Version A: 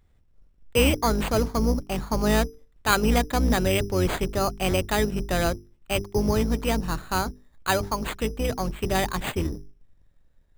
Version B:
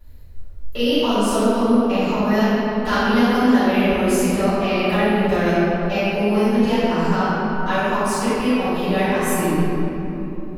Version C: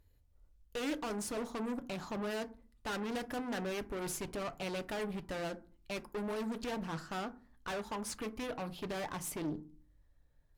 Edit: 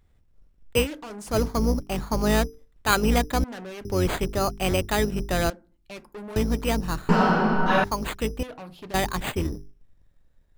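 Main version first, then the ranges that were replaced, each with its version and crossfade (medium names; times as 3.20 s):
A
0.83–1.31 s: from C, crossfade 0.10 s
3.44–3.85 s: from C
5.50–6.36 s: from C
7.09–7.84 s: from B
8.43–8.94 s: from C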